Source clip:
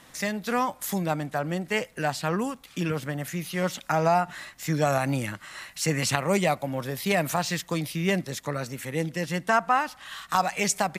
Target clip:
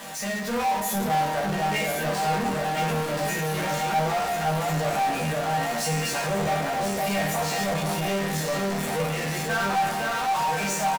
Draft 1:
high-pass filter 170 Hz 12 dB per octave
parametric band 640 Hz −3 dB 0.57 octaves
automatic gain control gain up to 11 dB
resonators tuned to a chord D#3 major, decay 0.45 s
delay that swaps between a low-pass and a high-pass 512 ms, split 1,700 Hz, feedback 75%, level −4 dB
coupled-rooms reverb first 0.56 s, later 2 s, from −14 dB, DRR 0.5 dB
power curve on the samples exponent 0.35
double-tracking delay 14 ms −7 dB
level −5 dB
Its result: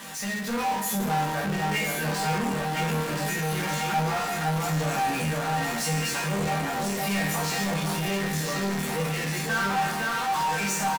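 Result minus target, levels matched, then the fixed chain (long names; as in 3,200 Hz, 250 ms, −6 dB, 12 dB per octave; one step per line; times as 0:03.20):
500 Hz band −3.5 dB
high-pass filter 170 Hz 12 dB per octave
parametric band 640 Hz +7.5 dB 0.57 octaves
automatic gain control gain up to 11 dB
resonators tuned to a chord D#3 major, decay 0.45 s
delay that swaps between a low-pass and a high-pass 512 ms, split 1,700 Hz, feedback 75%, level −4 dB
coupled-rooms reverb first 0.56 s, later 2 s, from −14 dB, DRR 0.5 dB
power curve on the samples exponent 0.35
double-tracking delay 14 ms −7 dB
level −5 dB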